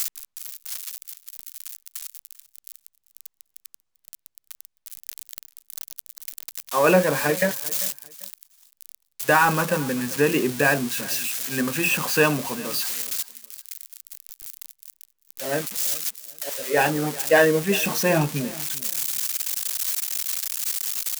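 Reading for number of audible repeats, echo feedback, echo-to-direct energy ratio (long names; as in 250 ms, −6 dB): 2, 23%, −19.5 dB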